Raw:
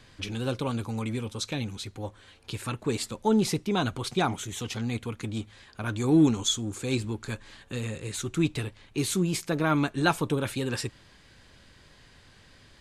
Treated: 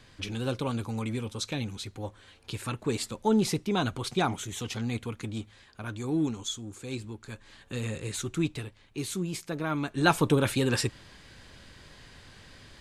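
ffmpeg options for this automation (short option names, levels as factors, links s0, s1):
-af "volume=7.94,afade=t=out:st=5.01:d=1.16:silence=0.446684,afade=t=in:st=7.3:d=0.68:silence=0.354813,afade=t=out:st=7.98:d=0.67:silence=0.446684,afade=t=in:st=9.83:d=0.41:silence=0.316228"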